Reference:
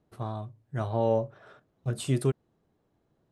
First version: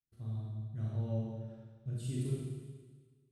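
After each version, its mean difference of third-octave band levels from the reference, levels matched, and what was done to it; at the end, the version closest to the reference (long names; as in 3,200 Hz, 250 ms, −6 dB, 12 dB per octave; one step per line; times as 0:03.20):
8.0 dB: downward expander −59 dBFS
guitar amp tone stack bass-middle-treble 10-0-1
four-comb reverb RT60 1.5 s, combs from 28 ms, DRR −6 dB
level +3 dB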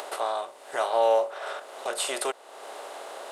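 15.0 dB: compressor on every frequency bin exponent 0.6
high-pass filter 580 Hz 24 dB per octave
upward compression, threshold −35 dBFS
level +7.5 dB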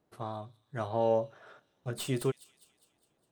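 3.0 dB: stylus tracing distortion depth 0.043 ms
low-shelf EQ 210 Hz −11 dB
on a send: delay with a high-pass on its return 204 ms, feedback 52%, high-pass 3,600 Hz, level −13.5 dB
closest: third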